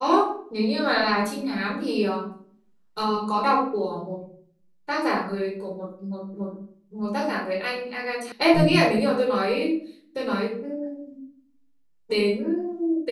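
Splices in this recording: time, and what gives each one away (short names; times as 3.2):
8.32 sound cut off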